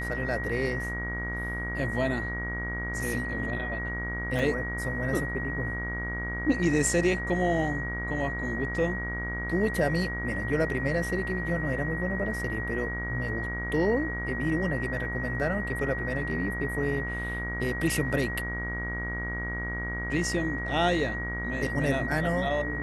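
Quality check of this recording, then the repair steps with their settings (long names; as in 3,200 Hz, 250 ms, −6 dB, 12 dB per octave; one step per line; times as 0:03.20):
mains buzz 60 Hz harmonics 38 −35 dBFS
whistle 1,900 Hz −33 dBFS
0:04.39: drop-out 3.1 ms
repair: hum removal 60 Hz, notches 38
notch filter 1,900 Hz, Q 30
repair the gap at 0:04.39, 3.1 ms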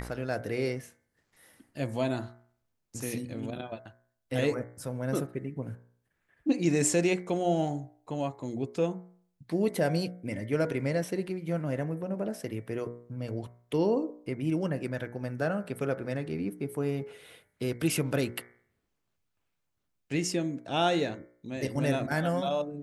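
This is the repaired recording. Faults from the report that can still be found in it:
none of them is left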